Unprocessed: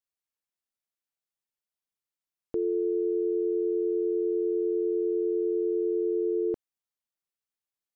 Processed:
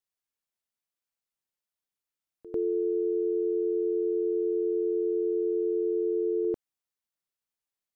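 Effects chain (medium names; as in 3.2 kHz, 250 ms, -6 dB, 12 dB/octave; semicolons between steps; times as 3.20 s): pre-echo 96 ms -17 dB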